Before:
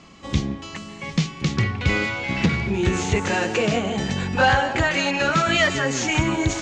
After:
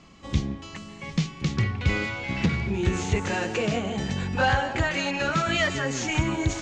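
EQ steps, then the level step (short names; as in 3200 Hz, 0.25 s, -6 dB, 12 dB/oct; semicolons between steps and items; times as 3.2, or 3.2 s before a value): low shelf 110 Hz +6.5 dB; -5.5 dB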